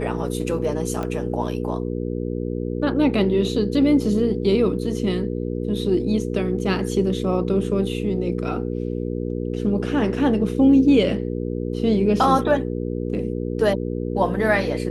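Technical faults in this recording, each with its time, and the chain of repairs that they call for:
hum 60 Hz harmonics 8 -26 dBFS
1.03 pop -16 dBFS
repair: de-click; de-hum 60 Hz, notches 8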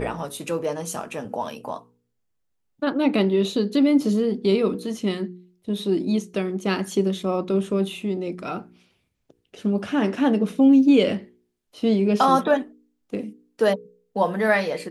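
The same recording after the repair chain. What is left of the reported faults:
none

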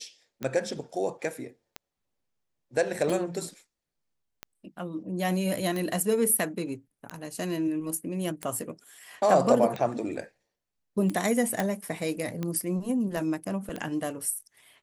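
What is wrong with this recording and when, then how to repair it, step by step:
tick 45 rpm -19 dBFS
11.6 pop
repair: de-click

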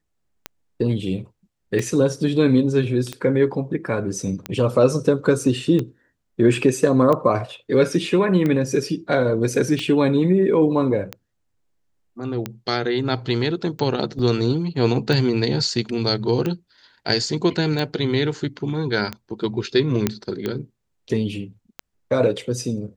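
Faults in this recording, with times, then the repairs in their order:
tick 45 rpm -12 dBFS
14.19 gap 3.1 ms
20.07 pop -5 dBFS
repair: de-click; interpolate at 14.19, 3.1 ms

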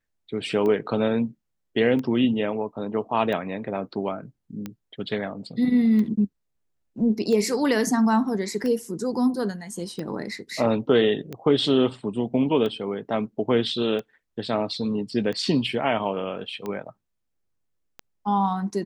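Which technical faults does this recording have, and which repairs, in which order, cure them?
tick 45 rpm -19 dBFS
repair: de-click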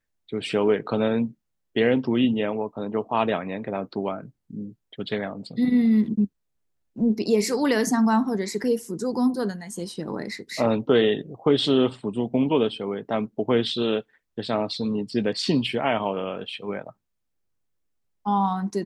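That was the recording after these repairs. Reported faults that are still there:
none

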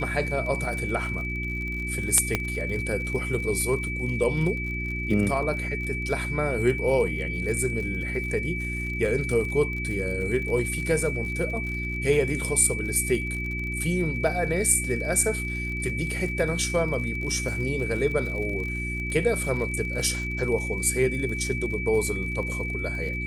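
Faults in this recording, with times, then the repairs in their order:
crackle 45/s -33 dBFS
hum 60 Hz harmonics 6 -32 dBFS
tone 2300 Hz -31 dBFS
2.35 pop -9 dBFS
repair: de-click; de-hum 60 Hz, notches 6; notch 2300 Hz, Q 30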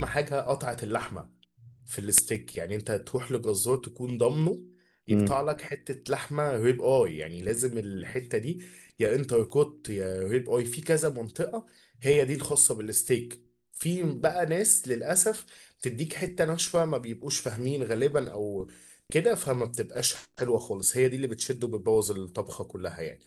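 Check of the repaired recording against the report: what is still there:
2.35 pop

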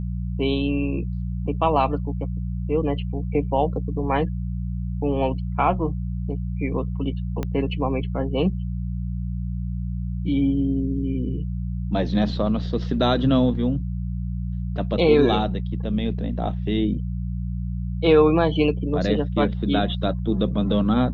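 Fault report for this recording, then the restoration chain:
hum 60 Hz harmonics 3 -27 dBFS
7.43 pop -14 dBFS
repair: de-click; de-hum 60 Hz, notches 3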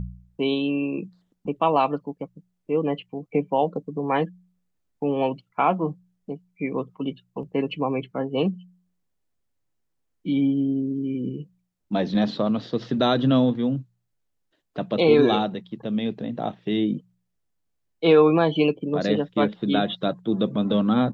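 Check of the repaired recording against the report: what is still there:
7.43 pop

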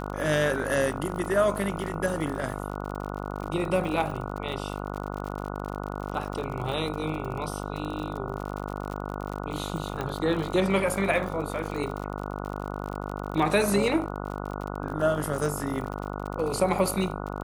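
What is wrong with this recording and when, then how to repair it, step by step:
buzz 50 Hz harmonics 29 -34 dBFS
crackle 57/s -33 dBFS
10.01 pop -17 dBFS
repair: de-click; de-hum 50 Hz, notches 29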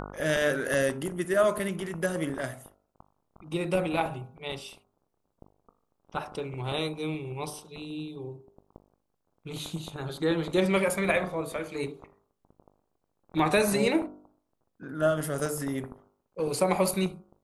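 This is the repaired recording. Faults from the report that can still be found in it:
none

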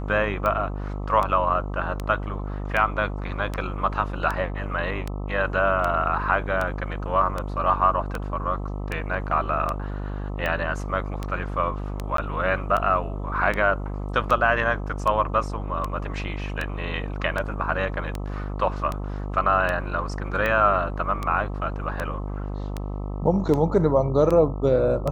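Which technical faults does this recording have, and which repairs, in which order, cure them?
buzz 50 Hz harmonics 26 -30 dBFS
tick 78 rpm -14 dBFS
12.17–12.18 gap 13 ms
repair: de-click; de-hum 50 Hz, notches 26; interpolate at 12.17, 13 ms

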